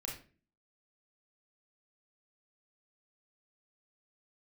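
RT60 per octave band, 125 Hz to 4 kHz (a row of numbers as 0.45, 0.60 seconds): 0.55, 0.60, 0.45, 0.30, 0.35, 0.30 seconds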